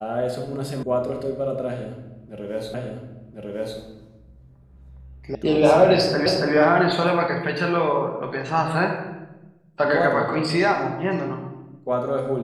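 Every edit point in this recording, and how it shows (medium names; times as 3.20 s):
0.83 s: sound stops dead
2.74 s: repeat of the last 1.05 s
5.35 s: sound stops dead
6.26 s: repeat of the last 0.28 s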